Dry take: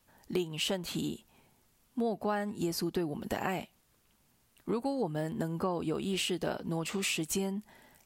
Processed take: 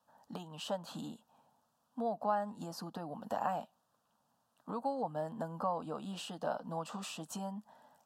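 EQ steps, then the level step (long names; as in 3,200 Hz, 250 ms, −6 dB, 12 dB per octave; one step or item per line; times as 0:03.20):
high-pass filter 290 Hz 12 dB per octave
low-pass filter 1,300 Hz 6 dB per octave
phaser with its sweep stopped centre 900 Hz, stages 4
+4.0 dB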